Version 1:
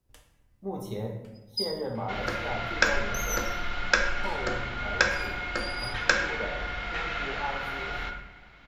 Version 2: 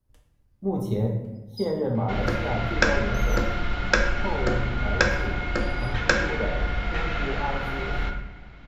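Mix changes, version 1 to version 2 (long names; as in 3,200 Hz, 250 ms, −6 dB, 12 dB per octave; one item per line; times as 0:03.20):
first sound −11.0 dB
master: add low-shelf EQ 490 Hz +12 dB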